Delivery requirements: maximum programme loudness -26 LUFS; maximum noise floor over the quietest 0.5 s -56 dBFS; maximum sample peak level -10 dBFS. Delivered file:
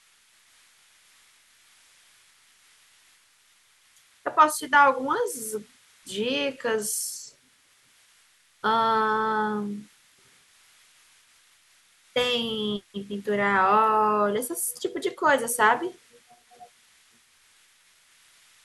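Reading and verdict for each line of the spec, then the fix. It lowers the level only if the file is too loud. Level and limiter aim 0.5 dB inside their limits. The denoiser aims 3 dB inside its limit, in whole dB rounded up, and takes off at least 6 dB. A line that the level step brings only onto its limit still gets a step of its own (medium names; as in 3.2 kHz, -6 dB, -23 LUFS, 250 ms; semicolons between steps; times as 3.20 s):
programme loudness -24.5 LUFS: fail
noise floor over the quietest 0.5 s -62 dBFS: pass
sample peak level -6.0 dBFS: fail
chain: trim -2 dB; peak limiter -10.5 dBFS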